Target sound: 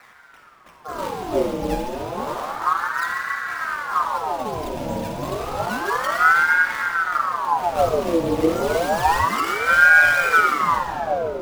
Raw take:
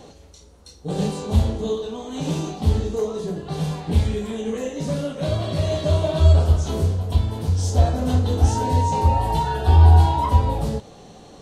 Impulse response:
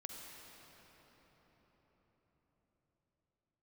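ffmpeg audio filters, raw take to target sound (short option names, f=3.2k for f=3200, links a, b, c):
-filter_complex "[0:a]acrusher=samples=12:mix=1:aa=0.000001:lfo=1:lforange=12:lforate=3[a];[1:a]atrim=start_sample=2205,asetrate=52920,aresample=44100[b];[a][b]afir=irnorm=-1:irlink=0,aeval=exprs='val(0)*sin(2*PI*960*n/s+960*0.6/0.3*sin(2*PI*0.3*n/s))':c=same,volume=5dB"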